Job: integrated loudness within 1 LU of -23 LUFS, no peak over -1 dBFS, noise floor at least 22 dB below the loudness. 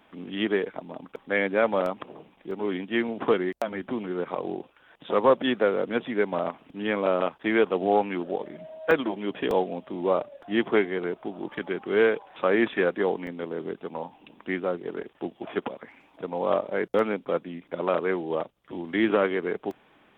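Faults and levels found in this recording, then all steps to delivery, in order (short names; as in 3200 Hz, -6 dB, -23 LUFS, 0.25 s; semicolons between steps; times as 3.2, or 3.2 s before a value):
dropouts 7; longest dropout 2.0 ms; loudness -27.5 LUFS; peak -8.5 dBFS; loudness target -23.0 LUFS
-> interpolate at 1.86/2.51/8.91/9.51/13.27/16.99/19.71, 2 ms; gain +4.5 dB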